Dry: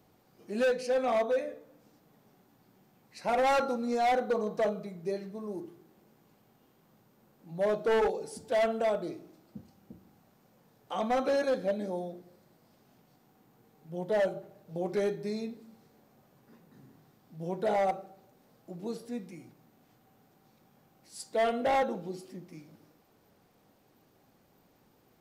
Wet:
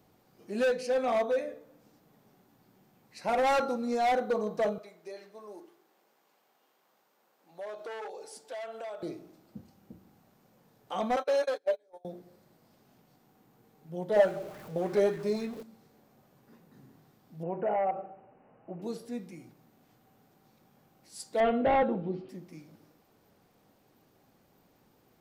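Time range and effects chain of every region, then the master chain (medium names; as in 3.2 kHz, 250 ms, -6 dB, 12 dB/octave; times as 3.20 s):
4.78–9.03 s: high-pass 590 Hz + compression 3:1, threshold -39 dBFS + peaking EQ 12 kHz -3.5 dB 0.89 oct
11.16–12.05 s: high-pass 420 Hz 24 dB/octave + gate -34 dBFS, range -28 dB + comb 6.9 ms, depth 42%
14.16–15.63 s: jump at every zero crossing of -45.5 dBFS + sweeping bell 3.5 Hz 470–1900 Hz +9 dB
17.43–18.82 s: brick-wall FIR low-pass 3 kHz + peaking EQ 750 Hz +6.5 dB 1.5 oct + compression 2:1, threshold -31 dBFS
21.40–22.29 s: low-pass 3.2 kHz 24 dB/octave + bass shelf 340 Hz +8.5 dB
whole clip: none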